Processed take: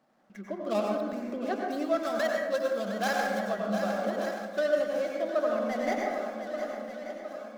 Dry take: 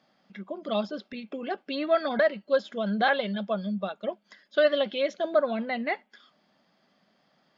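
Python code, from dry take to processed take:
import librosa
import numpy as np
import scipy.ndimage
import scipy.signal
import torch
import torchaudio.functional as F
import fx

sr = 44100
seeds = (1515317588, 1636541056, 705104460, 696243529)

p1 = scipy.ndimage.median_filter(x, 15, mode='constant')
p2 = fx.high_shelf(p1, sr, hz=3200.0, db=11.5, at=(2.03, 3.48))
p3 = p2 + fx.echo_swing(p2, sr, ms=1181, ratio=1.5, feedback_pct=49, wet_db=-13, dry=0)
p4 = fx.rev_plate(p3, sr, seeds[0], rt60_s=1.3, hf_ratio=0.35, predelay_ms=80, drr_db=-0.5)
p5 = fx.rider(p4, sr, range_db=4, speed_s=0.5)
p6 = fx.peak_eq(p5, sr, hz=170.0, db=-8.5, octaves=0.29)
y = F.gain(torch.from_numpy(p6), -4.5).numpy()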